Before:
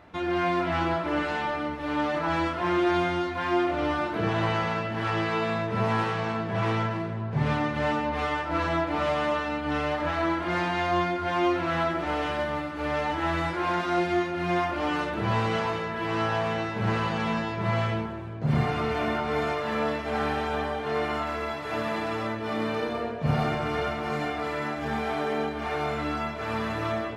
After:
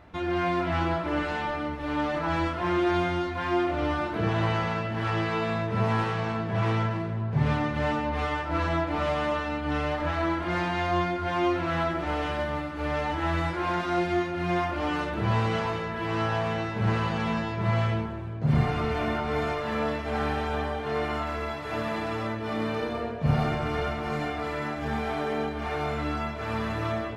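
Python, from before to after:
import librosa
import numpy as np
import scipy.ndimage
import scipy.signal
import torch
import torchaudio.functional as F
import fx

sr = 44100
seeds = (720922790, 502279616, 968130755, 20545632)

y = fx.low_shelf(x, sr, hz=87.0, db=11.5)
y = y * 10.0 ** (-1.5 / 20.0)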